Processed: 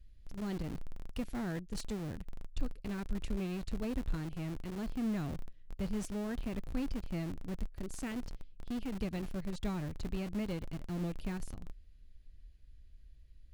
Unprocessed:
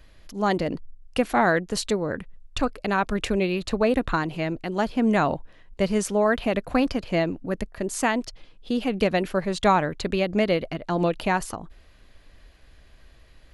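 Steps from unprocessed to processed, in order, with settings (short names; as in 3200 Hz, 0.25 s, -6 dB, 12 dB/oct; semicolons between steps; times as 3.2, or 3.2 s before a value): passive tone stack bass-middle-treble 10-0-1; in parallel at -4.5 dB: Schmitt trigger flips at -46.5 dBFS; on the sum: gain +2.5 dB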